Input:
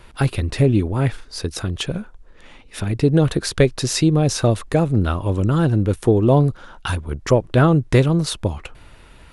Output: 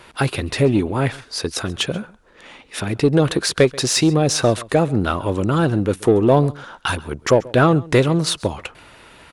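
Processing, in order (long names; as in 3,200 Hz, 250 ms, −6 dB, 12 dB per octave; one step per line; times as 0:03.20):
high-pass filter 300 Hz 6 dB per octave
high-shelf EQ 9,200 Hz −3 dB
in parallel at −4 dB: soft clipping −19.5 dBFS, distortion −8 dB
on the sum: single-tap delay 134 ms −22 dB
level +1.5 dB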